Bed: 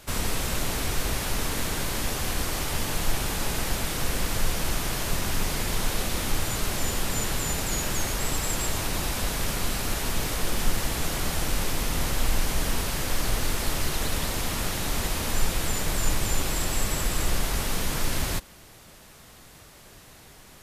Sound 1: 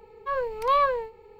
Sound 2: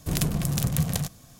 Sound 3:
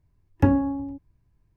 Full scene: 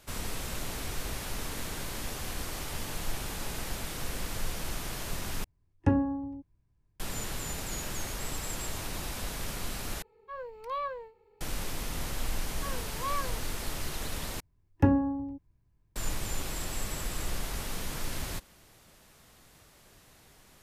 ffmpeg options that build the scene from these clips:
-filter_complex "[3:a]asplit=2[a][b];[1:a]asplit=2[c][d];[0:a]volume=-8.5dB[e];[a]aresample=22050,aresample=44100[f];[d]highpass=f=1.1k:p=1[g];[e]asplit=4[h][i][j][k];[h]atrim=end=5.444[l];[f]atrim=end=1.56,asetpts=PTS-STARTPTS,volume=-6dB[m];[i]atrim=start=6.996:end=10.024[n];[c]atrim=end=1.39,asetpts=PTS-STARTPTS,volume=-13dB[o];[j]atrim=start=11.406:end=14.404[p];[b]atrim=end=1.56,asetpts=PTS-STARTPTS,volume=-4dB[q];[k]atrim=start=15.956[r];[g]atrim=end=1.39,asetpts=PTS-STARTPTS,volume=-9.5dB,afade=t=in:d=0.004:c=hsin,afade=t=out:st=1.386:d=0.004:c=hsin,adelay=12350[s];[l][m]acrossfade=d=0.004:c1=hsin:c2=hsin[t];[t][n]acrossfade=d=0.004:c1=hsin:c2=hsin[u];[u][o]acrossfade=d=0.004:c1=hsin:c2=hsin[v];[v][p]acrossfade=d=0.004:c1=hsin:c2=hsin[w];[w][q]acrossfade=d=0.004:c1=hsin:c2=hsin[x];[x][r]acrossfade=d=0.004:c1=hsin:c2=hsin[y];[y][s]amix=inputs=2:normalize=0"

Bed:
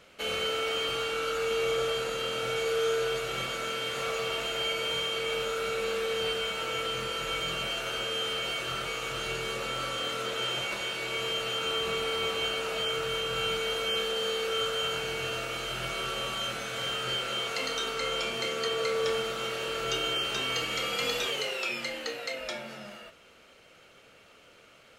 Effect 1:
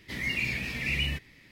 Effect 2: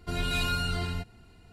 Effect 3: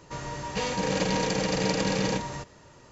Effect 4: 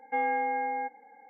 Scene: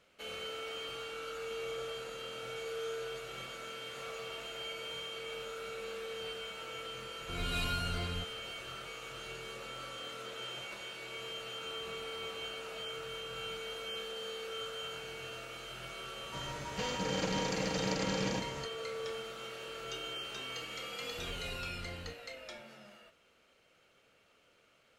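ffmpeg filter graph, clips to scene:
-filter_complex "[2:a]asplit=2[a][b];[0:a]volume=-11.5dB[c];[a]dynaudnorm=f=110:g=3:m=6dB,atrim=end=1.52,asetpts=PTS-STARTPTS,volume=-12.5dB,afade=t=in:d=0.004:c=hsin,afade=t=out:st=1.516:d=0.004:c=hsin,adelay=7210[d];[3:a]atrim=end=2.91,asetpts=PTS-STARTPTS,volume=-8dB,afade=t=in:d=0.004:c=hsin,afade=t=out:st=2.906:d=0.004:c=hsin,adelay=16220[e];[b]atrim=end=1.52,asetpts=PTS-STARTPTS,volume=-14.5dB,afade=t=in:d=0.004:c=hsin,afade=t=out:st=1.516:d=0.004:c=hsin,adelay=21100[f];[c][d][e][f]amix=inputs=4:normalize=0"

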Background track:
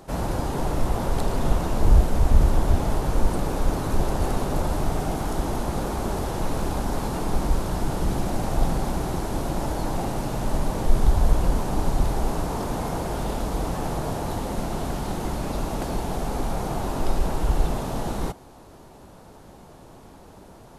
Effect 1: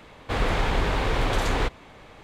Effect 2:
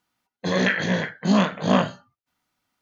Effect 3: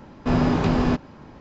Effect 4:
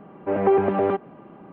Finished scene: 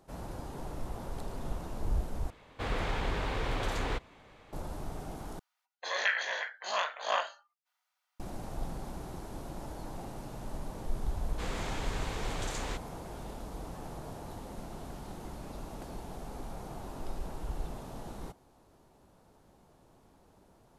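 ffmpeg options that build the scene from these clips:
-filter_complex "[1:a]asplit=2[a][b];[0:a]volume=-15.5dB[c];[2:a]highpass=f=680:w=0.5412,highpass=f=680:w=1.3066[d];[b]equalizer=f=7.3k:t=o:w=1.2:g=12.5[e];[c]asplit=3[f][g][h];[f]atrim=end=2.304[i];[a]atrim=end=2.23,asetpts=PTS-STARTPTS,volume=-9dB[j];[g]atrim=start=4.526:end=5.394[k];[d]atrim=end=2.81,asetpts=PTS-STARTPTS,volume=-6dB[l];[h]atrim=start=8.196[m];[e]atrim=end=2.23,asetpts=PTS-STARTPTS,volume=-14dB,afade=t=in:d=0.004:c=hsin,afade=t=out:st=2.226:d=0.004:c=hsin,adelay=11090[n];[i][j]acrossfade=d=0.004:c1=hsin:c2=hsin[o];[o][k]acrossfade=d=0.004:c1=hsin:c2=hsin[p];[p][l]acrossfade=d=0.004:c1=hsin:c2=hsin[q];[q][m]acrossfade=d=0.004:c1=hsin:c2=hsin[r];[r][n]amix=inputs=2:normalize=0"

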